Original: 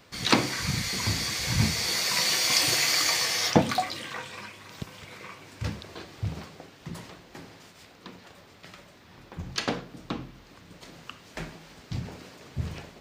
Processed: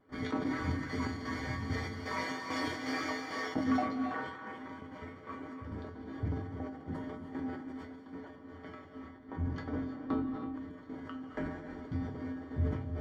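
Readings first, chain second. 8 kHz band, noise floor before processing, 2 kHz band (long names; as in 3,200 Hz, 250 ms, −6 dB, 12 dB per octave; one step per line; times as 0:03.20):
−26.5 dB, −53 dBFS, −9.5 dB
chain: parametric band 290 Hz +11.5 dB 0.79 octaves
mains-hum notches 50/100/150/200/250/300 Hz
in parallel at 0 dB: downward compressor, threshold −36 dBFS, peak gain reduction 24.5 dB
on the sum: pitch vibrato 2.1 Hz 37 cents
gate pattern ".xx..xxx." 168 BPM −12 dB
Savitzky-Golay smoothing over 41 samples
soft clipping −16.5 dBFS, distortion −20 dB
tuned comb filter 87 Hz, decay 0.3 s, harmonics odd, mix 90%
reverb whose tail is shaped and stops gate 350 ms rising, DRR 5.5 dB
level that may fall only so fast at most 60 dB per second
level +5 dB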